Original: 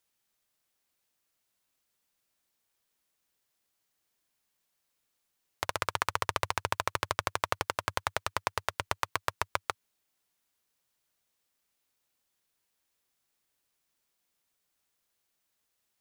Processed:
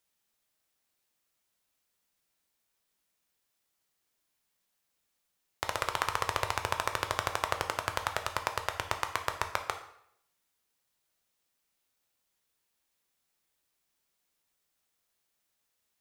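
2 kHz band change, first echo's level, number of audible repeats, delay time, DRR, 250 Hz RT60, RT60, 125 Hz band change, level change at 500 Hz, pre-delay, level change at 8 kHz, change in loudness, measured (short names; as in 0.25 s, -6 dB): 0.0 dB, none, none, none, 6.0 dB, 0.70 s, 0.70 s, -0.5 dB, 0.0 dB, 8 ms, 0.0 dB, 0.0 dB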